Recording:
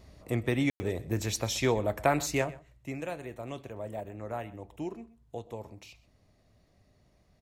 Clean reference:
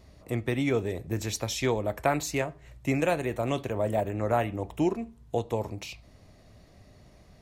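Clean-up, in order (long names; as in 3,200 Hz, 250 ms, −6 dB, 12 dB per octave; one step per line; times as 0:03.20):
ambience match 0:00.70–0:00.80
echo removal 127 ms −20 dB
level 0 dB, from 0:02.59 +11 dB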